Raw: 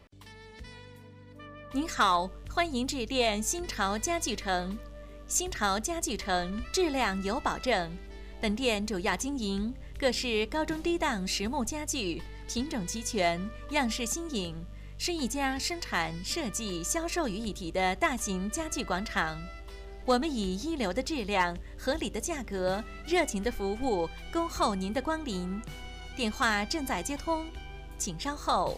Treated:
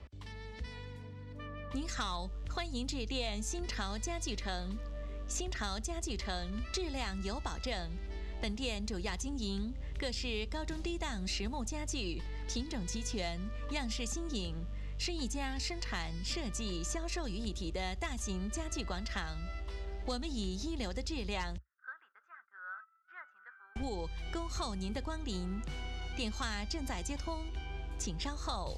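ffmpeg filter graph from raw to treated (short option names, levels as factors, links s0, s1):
-filter_complex "[0:a]asettb=1/sr,asplit=3[s0][s1][s2];[s0]atrim=end=21.584[s3];[s1]atrim=start=21.58:end=23.76,asetpts=PTS-STARTPTS,afade=t=in:d=0.004:c=qsin,afade=t=out:st=2.176:d=0.004:c=qsin,agate=range=0.1:threshold=0.01:ratio=16:release=100:detection=peak,asuperpass=centerf=1400:order=4:qfactor=4.7[s4];[s2]atrim=start=23.756[s5];[s3][s4]acrossfade=d=0.004:c1=hsin:c2=qsin[s6];[s6][s5]acrossfade=d=0.004:c1=qsin:c2=hsin,lowpass=6600,equalizer=f=62:t=o:w=1.1:g=13,acrossover=split=170|3700[s7][s8][s9];[s7]acompressor=threshold=0.0112:ratio=4[s10];[s8]acompressor=threshold=0.01:ratio=4[s11];[s9]acompressor=threshold=0.01:ratio=4[s12];[s10][s11][s12]amix=inputs=3:normalize=0"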